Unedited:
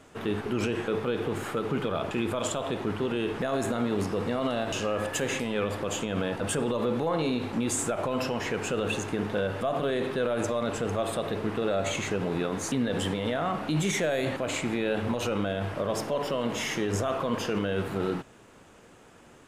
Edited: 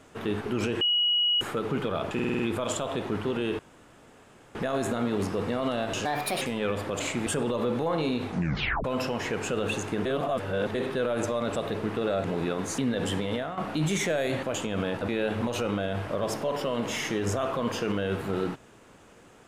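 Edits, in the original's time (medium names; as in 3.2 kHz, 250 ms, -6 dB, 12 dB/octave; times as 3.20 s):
0.81–1.41 s: bleep 2.91 kHz -21 dBFS
2.14 s: stutter 0.05 s, 6 plays
3.34 s: insert room tone 0.96 s
4.84–5.35 s: speed 140%
5.93–6.47 s: swap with 14.48–14.75 s
7.47 s: tape stop 0.58 s
9.26–9.95 s: reverse
10.76–11.16 s: delete
11.85–12.18 s: delete
13.26–13.51 s: fade out, to -11.5 dB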